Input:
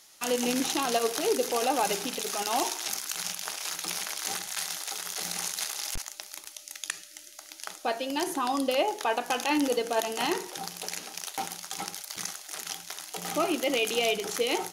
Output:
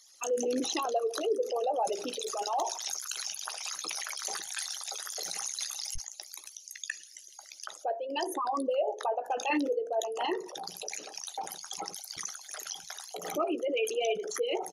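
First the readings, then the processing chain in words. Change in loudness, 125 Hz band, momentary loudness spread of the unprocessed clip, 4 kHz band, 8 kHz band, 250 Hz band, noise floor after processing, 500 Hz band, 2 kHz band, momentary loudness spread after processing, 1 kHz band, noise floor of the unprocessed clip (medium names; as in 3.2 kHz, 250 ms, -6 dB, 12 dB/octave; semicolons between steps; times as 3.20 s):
-3.5 dB, under -10 dB, 10 LU, -5.5 dB, -4.0 dB, -5.5 dB, -53 dBFS, -1.0 dB, -6.5 dB, 10 LU, -3.0 dB, -50 dBFS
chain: resonances exaggerated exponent 3; doubling 16 ms -13.5 dB; trim -3 dB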